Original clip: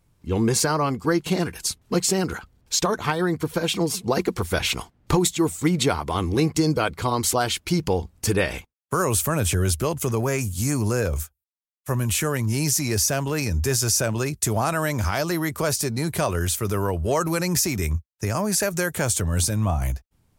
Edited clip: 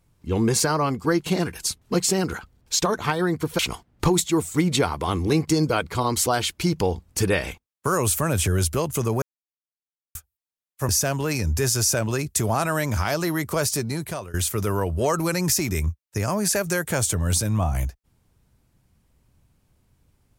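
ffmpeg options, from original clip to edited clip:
ffmpeg -i in.wav -filter_complex "[0:a]asplit=6[link_01][link_02][link_03][link_04][link_05][link_06];[link_01]atrim=end=3.592[link_07];[link_02]atrim=start=4.658:end=10.29,asetpts=PTS-STARTPTS,afade=type=out:start_time=5.628:duration=0.004:curve=hsin[link_08];[link_03]atrim=start=10.29:end=11.22,asetpts=PTS-STARTPTS,volume=0[link_09];[link_04]atrim=start=11.22:end=11.962,asetpts=PTS-STARTPTS,afade=type=in:duration=0.004:curve=hsin[link_10];[link_05]atrim=start=12.958:end=16.41,asetpts=PTS-STARTPTS,afade=type=out:start_time=2.902:duration=0.55:silence=0.1[link_11];[link_06]atrim=start=16.41,asetpts=PTS-STARTPTS,afade=type=in:duration=0.004:curve=hsin:silence=0.1[link_12];[link_08][link_09][link_10]concat=n=3:v=0:a=1[link_13];[link_07][link_13]acrossfade=duration=0.004:curve1=hsin:curve2=hsin[link_14];[link_11][link_12]concat=n=2:v=0:a=1[link_15];[link_14][link_15]acrossfade=duration=0.004:curve1=hsin:curve2=hsin" out.wav

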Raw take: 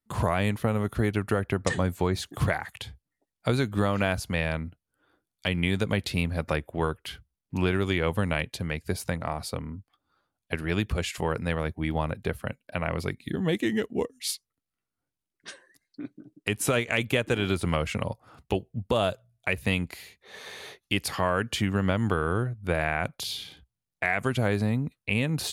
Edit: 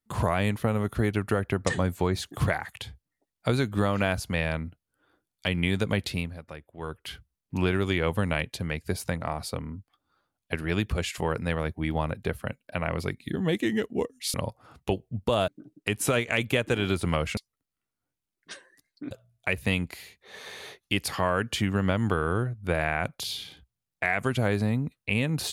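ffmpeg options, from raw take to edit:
ffmpeg -i in.wav -filter_complex "[0:a]asplit=7[link_01][link_02][link_03][link_04][link_05][link_06][link_07];[link_01]atrim=end=6.4,asetpts=PTS-STARTPTS,afade=type=out:start_time=6.05:duration=0.35:silence=0.188365[link_08];[link_02]atrim=start=6.4:end=6.77,asetpts=PTS-STARTPTS,volume=-14.5dB[link_09];[link_03]atrim=start=6.77:end=14.342,asetpts=PTS-STARTPTS,afade=type=in:duration=0.35:silence=0.188365[link_10];[link_04]atrim=start=17.968:end=19.112[link_11];[link_05]atrim=start=16.078:end=17.972[link_12];[link_06]atrim=start=14.338:end=16.082[link_13];[link_07]atrim=start=19.108[link_14];[link_08][link_09][link_10]concat=n=3:v=0:a=1[link_15];[link_15][link_11]acrossfade=duration=0.004:curve1=hsin:curve2=hsin[link_16];[link_16][link_12]acrossfade=duration=0.004:curve1=hsin:curve2=hsin[link_17];[link_17][link_13]acrossfade=duration=0.004:curve1=hsin:curve2=hsin[link_18];[link_18][link_14]acrossfade=duration=0.004:curve1=hsin:curve2=hsin" out.wav

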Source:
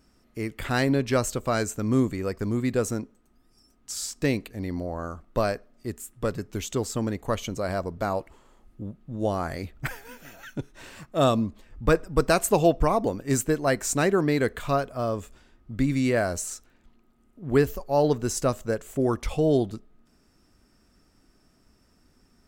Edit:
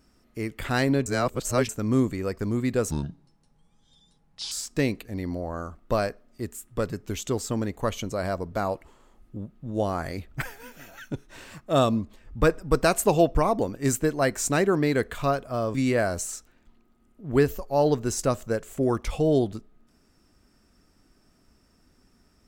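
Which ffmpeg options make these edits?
ffmpeg -i in.wav -filter_complex "[0:a]asplit=6[link_01][link_02][link_03][link_04][link_05][link_06];[link_01]atrim=end=1.062[link_07];[link_02]atrim=start=1.058:end=1.692,asetpts=PTS-STARTPTS,areverse[link_08];[link_03]atrim=start=1.688:end=2.914[link_09];[link_04]atrim=start=2.91:end=3.97,asetpts=PTS-STARTPTS,asetrate=29106,aresample=44100,atrim=end_sample=70827,asetpts=PTS-STARTPTS[link_10];[link_05]atrim=start=3.966:end=15.202[link_11];[link_06]atrim=start=15.928[link_12];[link_07][link_08]acrossfade=duration=0.004:curve1=hsin:curve2=hsin[link_13];[link_13][link_09]acrossfade=duration=0.004:curve1=hsin:curve2=hsin[link_14];[link_14][link_10]acrossfade=duration=0.004:curve1=hsin:curve2=hsin[link_15];[link_15][link_11]acrossfade=duration=0.004:curve1=hsin:curve2=hsin[link_16];[link_16][link_12]acrossfade=duration=0.004:curve1=hsin:curve2=hsin" out.wav

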